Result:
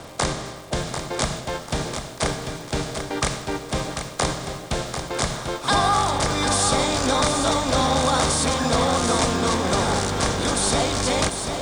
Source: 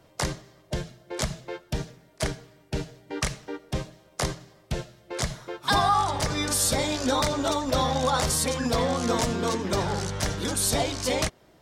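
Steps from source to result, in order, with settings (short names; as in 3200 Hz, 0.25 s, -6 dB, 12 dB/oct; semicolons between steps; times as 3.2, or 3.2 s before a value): per-bin compression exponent 0.6; steep low-pass 9800 Hz 72 dB/oct; reverse; upward compressor, threshold -26 dBFS; reverse; crackle 290/s -35 dBFS; lo-fi delay 0.743 s, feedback 35%, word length 8-bit, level -7 dB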